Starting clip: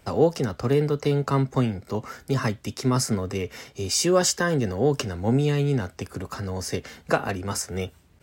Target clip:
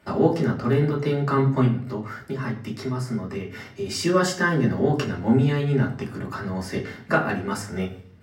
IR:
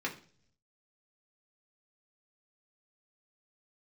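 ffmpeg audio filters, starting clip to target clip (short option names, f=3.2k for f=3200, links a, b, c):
-filter_complex "[0:a]asettb=1/sr,asplit=3[a][b][c];[a]atrim=end=1.654[d];[b]atrim=start=1.65:end=3.86,asetpts=PTS-STARTPTS,afade=t=in:d=0.004:c=qsin,afade=t=out:st=2.206:d=0.004:c=qsin,acompressor=threshold=-28dB:ratio=10[e];[c]atrim=start=3.856[f];[d][e]acrossfade=d=0.004:c1=hsin:c2=qsin[g];[g][f]acrossfade=d=0.004:c1=qsin:c2=hsin[h];[1:a]atrim=start_sample=2205,asetrate=34398,aresample=44100[i];[h][i]afir=irnorm=-1:irlink=0,volume=-3.5dB"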